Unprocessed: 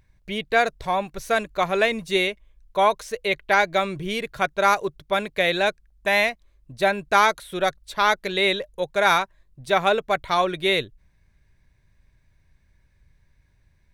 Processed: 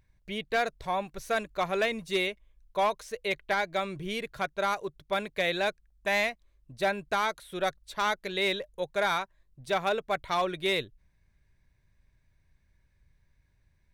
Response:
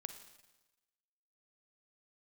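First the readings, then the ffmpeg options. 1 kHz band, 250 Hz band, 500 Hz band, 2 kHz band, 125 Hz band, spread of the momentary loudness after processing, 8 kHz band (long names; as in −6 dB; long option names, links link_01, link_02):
−8.5 dB, −7.0 dB, −7.5 dB, −8.0 dB, −7.0 dB, 7 LU, −7.5 dB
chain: -af "alimiter=limit=-9dB:level=0:latency=1:release=460,asoftclip=type=hard:threshold=-13.5dB,volume=-6.5dB"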